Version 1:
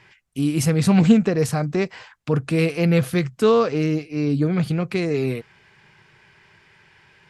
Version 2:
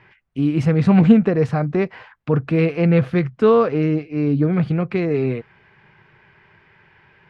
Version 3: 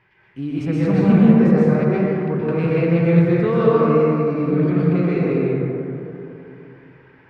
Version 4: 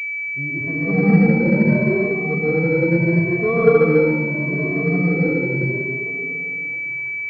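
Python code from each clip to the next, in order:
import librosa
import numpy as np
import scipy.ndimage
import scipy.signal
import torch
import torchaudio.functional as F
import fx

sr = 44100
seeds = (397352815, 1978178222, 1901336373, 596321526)

y1 = scipy.signal.sosfilt(scipy.signal.butter(2, 2200.0, 'lowpass', fs=sr, output='sos'), x)
y1 = y1 * 10.0 ** (2.5 / 20.0)
y2 = fx.rev_plate(y1, sr, seeds[0], rt60_s=3.1, hf_ratio=0.3, predelay_ms=110, drr_db=-8.5)
y2 = y2 * 10.0 ** (-8.5 / 20.0)
y3 = fx.spec_ripple(y2, sr, per_octave=1.4, drift_hz=0.75, depth_db=23)
y3 = fx.pwm(y3, sr, carrier_hz=2300.0)
y3 = y3 * 10.0 ** (-5.5 / 20.0)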